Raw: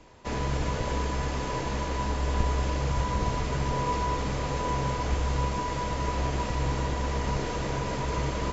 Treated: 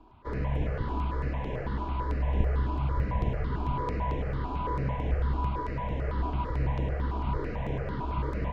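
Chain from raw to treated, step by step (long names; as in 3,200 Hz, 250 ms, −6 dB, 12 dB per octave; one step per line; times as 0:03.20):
high-frequency loss of the air 430 metres
step-sequenced phaser 9 Hz 520–4,600 Hz
level +1 dB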